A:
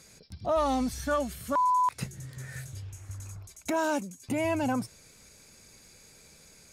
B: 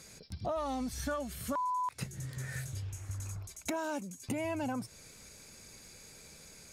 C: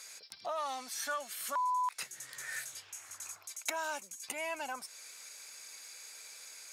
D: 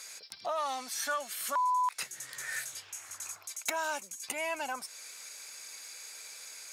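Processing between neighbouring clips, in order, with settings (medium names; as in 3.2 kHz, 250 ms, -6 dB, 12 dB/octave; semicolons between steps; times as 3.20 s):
compression 5:1, threshold -35 dBFS, peak gain reduction 11.5 dB; trim +1.5 dB
high-pass 1 kHz 12 dB/octave; trim +4.5 dB
hard clipper -25 dBFS, distortion -28 dB; trim +3.5 dB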